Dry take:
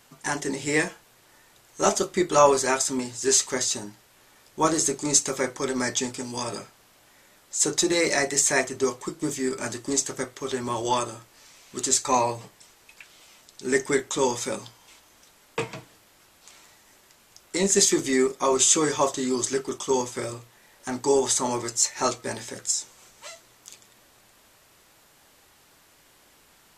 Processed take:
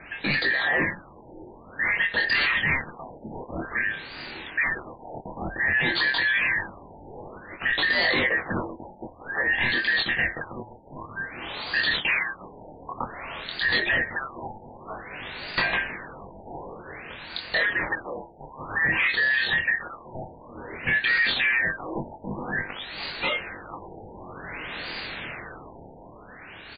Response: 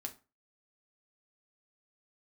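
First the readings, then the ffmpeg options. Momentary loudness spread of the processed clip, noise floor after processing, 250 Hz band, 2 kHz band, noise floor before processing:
20 LU, −47 dBFS, −7.5 dB, +11.5 dB, −58 dBFS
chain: -filter_complex "[0:a]afftfilt=real='real(if(lt(b,272),68*(eq(floor(b/68),0)*1+eq(floor(b/68),1)*0+eq(floor(b/68),2)*3+eq(floor(b/68),3)*2)+mod(b,68),b),0)':imag='imag(if(lt(b,272),68*(eq(floor(b/68),0)*1+eq(floor(b/68),1)*0+eq(floor(b/68),2)*3+eq(floor(b/68),3)*2)+mod(b,68),b),0)':win_size=2048:overlap=0.75,asplit=2[link_01][link_02];[link_02]asoftclip=type=tanh:threshold=-20dB,volume=-6dB[link_03];[link_01][link_03]amix=inputs=2:normalize=0,dynaudnorm=framelen=240:gausssize=11:maxgain=9dB,aresample=16000,aeval=exprs='0.891*sin(PI/2*3.98*val(0)/0.891)':channel_layout=same,aresample=44100,acompressor=threshold=-14dB:ratio=8,aemphasis=mode=reproduction:type=50kf,flanger=delay=20:depth=7.8:speed=0.13,alimiter=limit=-16.5dB:level=0:latency=1:release=11,equalizer=frequency=5000:width_type=o:width=0.8:gain=11,afftfilt=real='re*lt(b*sr/1024,930*pow(4900/930,0.5+0.5*sin(2*PI*0.53*pts/sr)))':imag='im*lt(b*sr/1024,930*pow(4900/930,0.5+0.5*sin(2*PI*0.53*pts/sr)))':win_size=1024:overlap=0.75"

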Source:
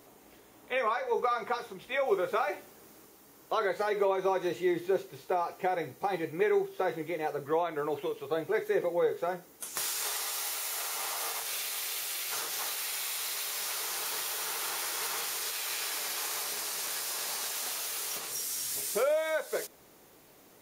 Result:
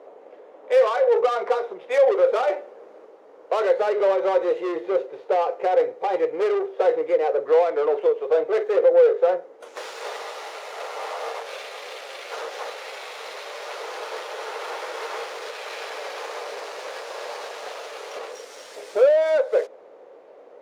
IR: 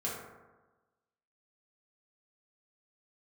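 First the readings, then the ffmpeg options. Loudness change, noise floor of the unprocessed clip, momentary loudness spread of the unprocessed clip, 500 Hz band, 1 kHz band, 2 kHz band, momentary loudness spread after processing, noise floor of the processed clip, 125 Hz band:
+8.5 dB, −58 dBFS, 5 LU, +12.0 dB, +6.5 dB, +3.0 dB, 17 LU, −48 dBFS, below −10 dB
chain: -af "asoftclip=type=tanh:threshold=-30.5dB,adynamicsmooth=sensitivity=6:basefreq=1700,highpass=frequency=510:width_type=q:width=4.9,volume=7.5dB"

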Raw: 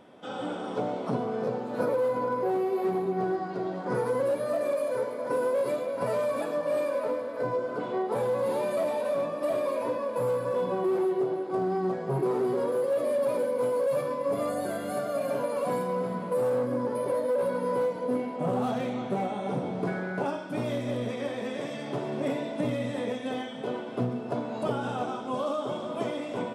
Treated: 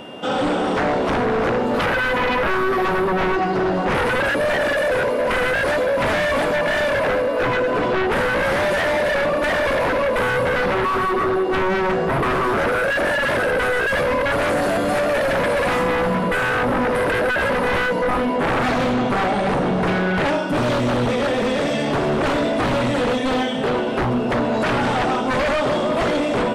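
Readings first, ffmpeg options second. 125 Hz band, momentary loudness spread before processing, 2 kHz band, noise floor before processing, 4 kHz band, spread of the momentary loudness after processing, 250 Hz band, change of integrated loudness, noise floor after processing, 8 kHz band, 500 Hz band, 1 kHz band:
+10.5 dB, 6 LU, +21.5 dB, −36 dBFS, +18.0 dB, 1 LU, +10.0 dB, +10.0 dB, −21 dBFS, +11.5 dB, +7.5 dB, +12.5 dB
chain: -filter_complex "[0:a]aeval=exprs='val(0)+0.00126*sin(2*PI*2800*n/s)':channel_layout=same,aeval=exprs='0.158*sin(PI/2*4.47*val(0)/0.158)':channel_layout=same,acrossover=split=9000[link_01][link_02];[link_02]acompressor=threshold=-51dB:ratio=4:attack=1:release=60[link_03];[link_01][link_03]amix=inputs=2:normalize=0"

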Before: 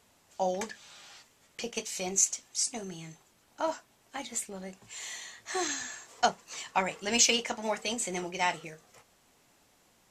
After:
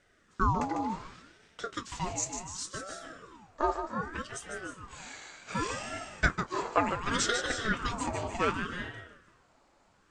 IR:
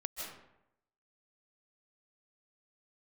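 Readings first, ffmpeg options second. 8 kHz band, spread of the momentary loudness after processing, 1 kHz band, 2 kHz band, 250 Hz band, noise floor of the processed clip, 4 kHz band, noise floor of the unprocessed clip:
−8.5 dB, 16 LU, +2.0 dB, +2.5 dB, +2.5 dB, −66 dBFS, −5.5 dB, −66 dBFS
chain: -filter_complex "[0:a]highpass=frequency=260:width=0.5412,highpass=frequency=260:width=1.3066,equalizer=frequency=300:width_type=q:width=4:gain=8,equalizer=frequency=560:width_type=q:width=4:gain=8,equalizer=frequency=1000:width_type=q:width=4:gain=8,equalizer=frequency=3200:width_type=q:width=4:gain=-8,equalizer=frequency=5800:width_type=q:width=4:gain=-8,lowpass=frequency=7000:width=0.5412,lowpass=frequency=7000:width=1.3066,asplit=2[link_01][link_02];[1:a]atrim=start_sample=2205,adelay=149[link_03];[link_02][link_03]afir=irnorm=-1:irlink=0,volume=-5dB[link_04];[link_01][link_04]amix=inputs=2:normalize=0,aeval=exprs='val(0)*sin(2*PI*630*n/s+630*0.6/0.67*sin(2*PI*0.67*n/s))':channel_layout=same"

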